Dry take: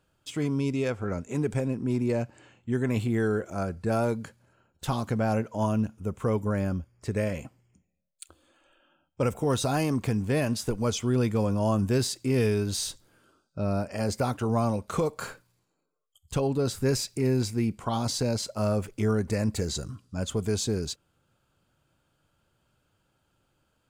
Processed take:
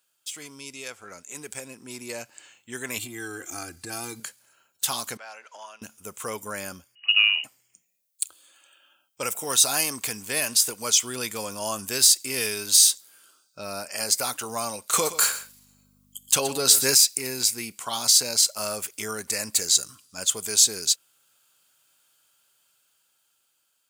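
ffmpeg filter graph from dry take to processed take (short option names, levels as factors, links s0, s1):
-filter_complex "[0:a]asettb=1/sr,asplit=3[s0][s1][s2];[s0]atrim=end=2.984[s3];[s1]atrim=start=2.98:end=4.2,asetpts=PTS-STARTPTS,afade=t=in:d=0.004:c=qsin,afade=t=out:st=1.216:d=0.004:c=qsin,lowshelf=f=350:t=q:w=3:g=7,aecho=1:1:2.5:0.84,atrim=end_sample=53802,acompressor=threshold=0.0631:ratio=6:attack=3.2:release=140:knee=1:detection=peak[s4];[s2]atrim=start=4.196[s5];[s3][s4]acrossfade=d=0.004:c1=hsin:c2=qsin[s6];[s6][s5]acrossfade=d=0.004:c1=qsin:c2=hsin,asettb=1/sr,asplit=3[s7][s8][s9];[s7]atrim=end=5.174[s10];[s8]atrim=start=5.17:end=5.82,asetpts=PTS-STARTPTS,afade=t=in:d=0.004:c=qsin,afade=t=out:st=0.646:d=0.004:c=qsin,acompressor=threshold=0.0355:ratio=10:attack=3.2:release=140:knee=1:detection=peak,highpass=770,lowpass=3800[s11];[s9]atrim=start=5.816[s12];[s10][s11]acrossfade=d=0.004:c1=hsin:c2=qsin[s13];[s13][s12]acrossfade=d=0.004:c1=qsin:c2=hsin,asettb=1/sr,asplit=3[s14][s15][s16];[s14]atrim=end=6.954[s17];[s15]atrim=start=6.95:end=7.44,asetpts=PTS-STARTPTS,afade=t=in:d=0.004:c=qsin,afade=t=out:st=0.486:d=0.004:c=qsin,highshelf=f=2100:g=-10.5,lowpass=f=2600:t=q:w=0.5098,lowpass=f=2600:t=q:w=0.6013,lowpass=f=2600:t=q:w=0.9,lowpass=f=2600:t=q:w=2.563,afreqshift=-3000[s18];[s16]atrim=start=7.436[s19];[s17][s18]acrossfade=d=0.004:c1=hsin:c2=qsin[s20];[s20][s19]acrossfade=d=0.004:c1=qsin:c2=hsin,asettb=1/sr,asplit=3[s21][s22][s23];[s21]atrim=end=14.934[s24];[s22]atrim=start=14.93:end=16.95,asetpts=PTS-STARTPTS,afade=t=in:d=0.004:c=qsin,afade=t=out:st=2.016:d=0.004:c=qsin,aecho=1:1:122:0.2,atrim=end_sample=89082,acontrast=53,aeval=exprs='val(0)+0.00891*(sin(2*PI*50*n/s)+sin(2*PI*2*50*n/s)/2+sin(2*PI*3*50*n/s)/3+sin(2*PI*4*50*n/s)/4+sin(2*PI*5*50*n/s)/5)':c=same[s25];[s23]atrim=start=16.946[s26];[s24][s25]acrossfade=d=0.004:c1=hsin:c2=qsin[s27];[s27][s26]acrossfade=d=0.004:c1=qsin:c2=hsin,aderivative,dynaudnorm=f=580:g=7:m=2.51,volume=2.82"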